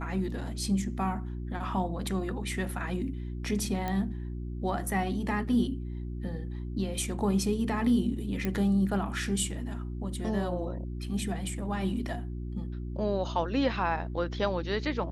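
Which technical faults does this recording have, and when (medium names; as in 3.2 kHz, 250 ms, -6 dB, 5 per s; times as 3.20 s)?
hum 60 Hz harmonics 6 -36 dBFS
3.88 s: pop -19 dBFS
8.45 s: pop -17 dBFS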